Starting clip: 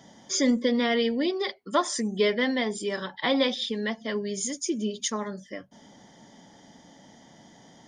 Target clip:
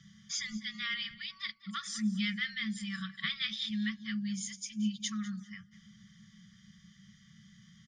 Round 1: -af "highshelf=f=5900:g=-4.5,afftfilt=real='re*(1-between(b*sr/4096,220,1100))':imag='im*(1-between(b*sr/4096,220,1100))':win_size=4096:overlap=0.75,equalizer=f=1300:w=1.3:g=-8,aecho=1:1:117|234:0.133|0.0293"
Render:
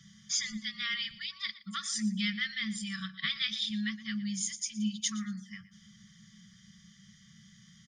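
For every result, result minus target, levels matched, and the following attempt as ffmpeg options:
echo 83 ms early; 8 kHz band +4.5 dB
-af "highshelf=f=5900:g=-4.5,afftfilt=real='re*(1-between(b*sr/4096,220,1100))':imag='im*(1-between(b*sr/4096,220,1100))':win_size=4096:overlap=0.75,equalizer=f=1300:w=1.3:g=-8,aecho=1:1:200|400:0.133|0.0293"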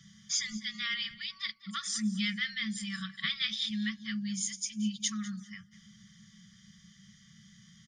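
8 kHz band +4.5 dB
-af "highshelf=f=5900:g=-16,afftfilt=real='re*(1-between(b*sr/4096,220,1100))':imag='im*(1-between(b*sr/4096,220,1100))':win_size=4096:overlap=0.75,equalizer=f=1300:w=1.3:g=-8,aecho=1:1:200|400:0.133|0.0293"

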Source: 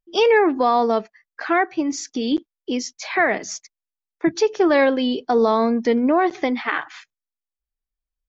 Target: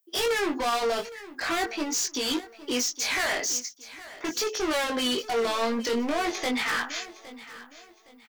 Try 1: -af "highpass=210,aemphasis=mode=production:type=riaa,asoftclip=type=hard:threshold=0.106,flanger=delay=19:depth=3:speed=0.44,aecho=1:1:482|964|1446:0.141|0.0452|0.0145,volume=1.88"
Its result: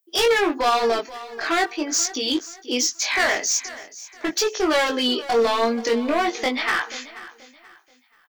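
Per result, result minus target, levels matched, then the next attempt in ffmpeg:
echo 331 ms early; hard clipper: distortion -5 dB
-af "highpass=210,aemphasis=mode=production:type=riaa,asoftclip=type=hard:threshold=0.106,flanger=delay=19:depth=3:speed=0.44,aecho=1:1:813|1626|2439:0.141|0.0452|0.0145,volume=1.88"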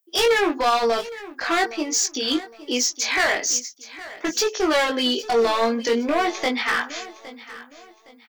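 hard clipper: distortion -5 dB
-af "highpass=210,aemphasis=mode=production:type=riaa,asoftclip=type=hard:threshold=0.0398,flanger=delay=19:depth=3:speed=0.44,aecho=1:1:813|1626|2439:0.141|0.0452|0.0145,volume=1.88"

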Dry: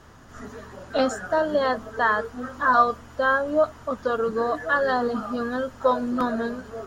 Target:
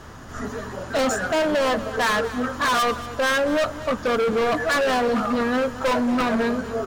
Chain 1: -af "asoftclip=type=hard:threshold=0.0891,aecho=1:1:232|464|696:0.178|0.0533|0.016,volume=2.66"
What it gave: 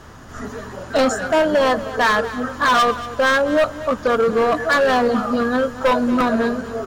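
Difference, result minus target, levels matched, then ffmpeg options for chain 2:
hard clipper: distortion -4 dB
-af "asoftclip=type=hard:threshold=0.0422,aecho=1:1:232|464|696:0.178|0.0533|0.016,volume=2.66"

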